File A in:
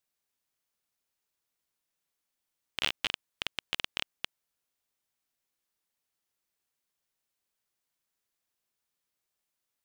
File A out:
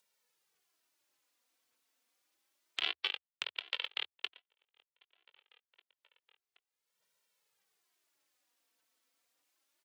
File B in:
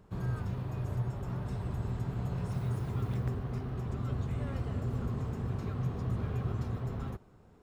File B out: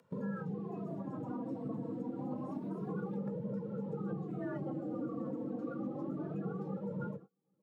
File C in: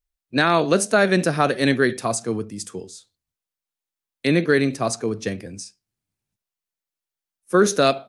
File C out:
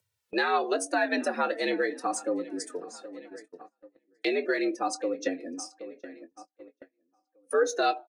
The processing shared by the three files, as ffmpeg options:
-filter_complex "[0:a]flanger=delay=2.2:depth=2.6:regen=2:speed=0.28:shape=sinusoidal,highshelf=f=6700:g=-6,afreqshift=76,acompressor=threshold=0.0355:ratio=2,highpass=230,afftdn=nr=21:nf=-43,highshelf=f=2500:g=2.5,asplit=2[s0][s1];[s1]adelay=773,lowpass=f=3600:p=1,volume=0.0944,asplit=2[s2][s3];[s3]adelay=773,lowpass=f=3600:p=1,volume=0.37,asplit=2[s4][s5];[s5]adelay=773,lowpass=f=3600:p=1,volume=0.37[s6];[s0][s2][s4][s6]amix=inputs=4:normalize=0,agate=range=0.0158:threshold=0.00178:ratio=16:detection=peak,asplit=2[s7][s8];[s8]adelay=21,volume=0.224[s9];[s7][s9]amix=inputs=2:normalize=0,aphaser=in_gain=1:out_gain=1:delay=4.1:decay=0.26:speed=1.7:type=sinusoidal,acompressor=mode=upward:threshold=0.0251:ratio=2.5"

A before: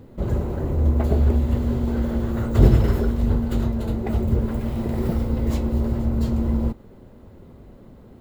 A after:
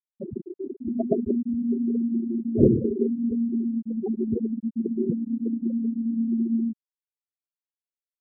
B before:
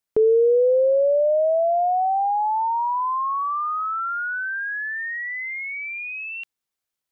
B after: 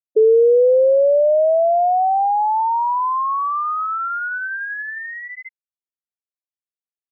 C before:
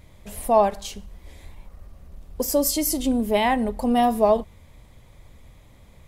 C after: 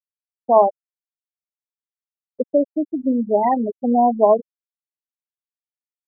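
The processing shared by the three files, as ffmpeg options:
-filter_complex "[0:a]acrossover=split=170 2000:gain=0.0708 1 0.178[s0][s1][s2];[s0][s1][s2]amix=inputs=3:normalize=0,afftfilt=real='re*gte(hypot(re,im),0.251)':imag='im*gte(hypot(re,im),0.251)':win_size=1024:overlap=0.75,volume=1.68"

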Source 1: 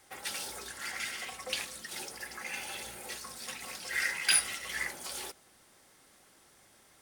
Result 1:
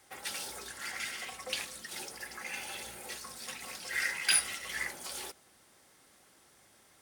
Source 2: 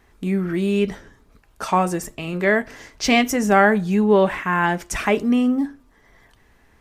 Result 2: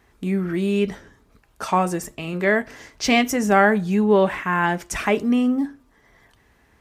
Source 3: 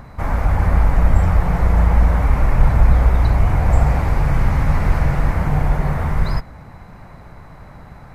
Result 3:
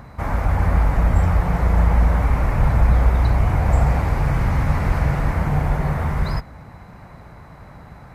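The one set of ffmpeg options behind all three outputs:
-af "highpass=40,volume=0.891"

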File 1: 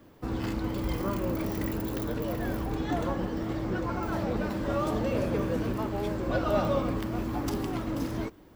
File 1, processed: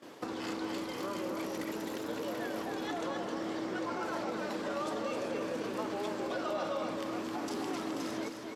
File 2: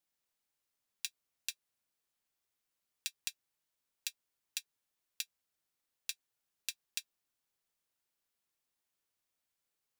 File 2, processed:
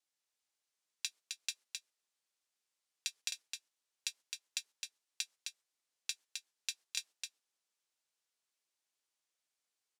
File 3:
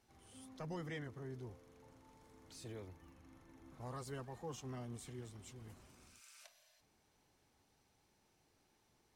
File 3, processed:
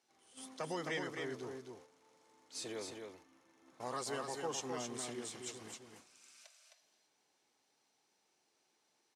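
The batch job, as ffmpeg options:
-filter_complex "[0:a]agate=range=0.251:threshold=0.00158:ratio=16:detection=peak,highshelf=f=4000:g=8.5,acontrast=81,alimiter=limit=0.158:level=0:latency=1:release=27,acompressor=threshold=0.0224:ratio=6,highpass=310,lowpass=7700,asplit=2[s0][s1];[s1]aecho=0:1:262:0.562[s2];[s0][s2]amix=inputs=2:normalize=0,volume=1.12"

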